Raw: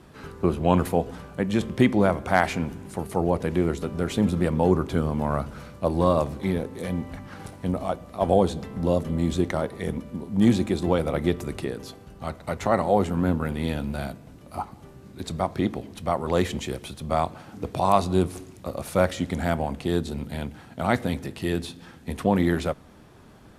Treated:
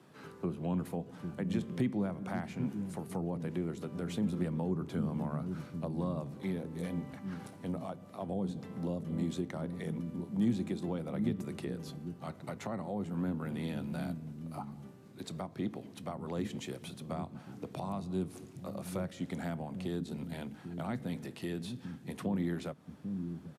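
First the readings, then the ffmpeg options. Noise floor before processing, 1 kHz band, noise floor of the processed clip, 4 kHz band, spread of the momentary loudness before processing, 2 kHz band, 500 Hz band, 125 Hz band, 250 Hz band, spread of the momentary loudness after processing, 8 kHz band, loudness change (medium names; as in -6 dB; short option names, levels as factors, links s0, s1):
-49 dBFS, -18.0 dB, -53 dBFS, -13.0 dB, 14 LU, -16.0 dB, -16.0 dB, -10.0 dB, -9.5 dB, 9 LU, -12.0 dB, -12.5 dB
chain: -filter_complex "[0:a]highpass=f=120:w=0.5412,highpass=f=120:w=1.3066,acrossover=split=260[s0][s1];[s0]aecho=1:1:795:0.708[s2];[s1]acompressor=threshold=0.0282:ratio=6[s3];[s2][s3]amix=inputs=2:normalize=0,volume=0.376"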